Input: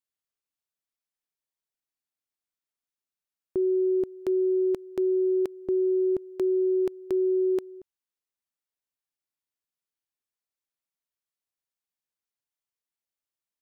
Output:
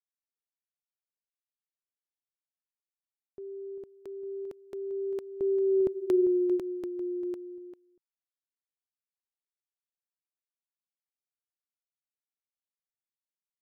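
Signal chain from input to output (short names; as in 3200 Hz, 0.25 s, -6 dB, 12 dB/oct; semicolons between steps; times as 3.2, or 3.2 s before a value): Doppler pass-by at 6, 17 m/s, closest 5.2 m; outdoor echo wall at 68 m, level -11 dB; gain +2 dB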